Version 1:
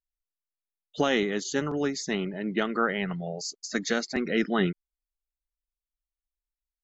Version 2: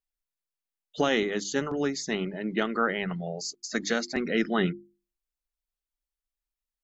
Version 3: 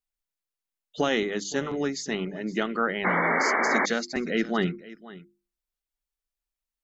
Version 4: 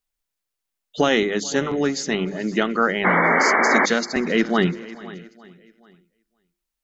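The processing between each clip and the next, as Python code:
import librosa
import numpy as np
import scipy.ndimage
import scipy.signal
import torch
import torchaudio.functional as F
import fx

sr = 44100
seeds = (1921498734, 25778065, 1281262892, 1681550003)

y1 = fx.hum_notches(x, sr, base_hz=50, count=7)
y2 = y1 + 10.0 ** (-18.5 / 20.0) * np.pad(y1, (int(519 * sr / 1000.0), 0))[:len(y1)]
y2 = fx.spec_paint(y2, sr, seeds[0], shape='noise', start_s=3.04, length_s=0.82, low_hz=220.0, high_hz=2300.0, level_db=-24.0)
y3 = fx.echo_feedback(y2, sr, ms=429, feedback_pct=50, wet_db=-22.0)
y3 = F.gain(torch.from_numpy(y3), 6.5).numpy()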